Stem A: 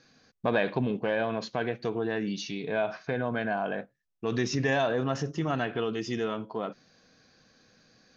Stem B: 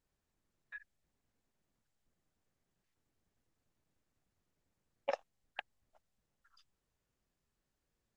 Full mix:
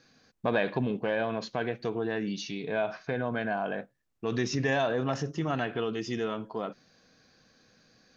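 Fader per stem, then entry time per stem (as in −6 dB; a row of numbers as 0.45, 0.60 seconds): −1.0, −3.0 decibels; 0.00, 0.00 seconds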